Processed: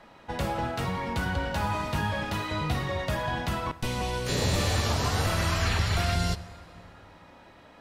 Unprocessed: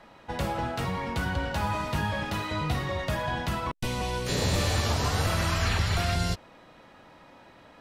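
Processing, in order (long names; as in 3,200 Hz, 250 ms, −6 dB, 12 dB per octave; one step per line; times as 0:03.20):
dense smooth reverb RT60 3 s, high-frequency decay 0.65×, DRR 15 dB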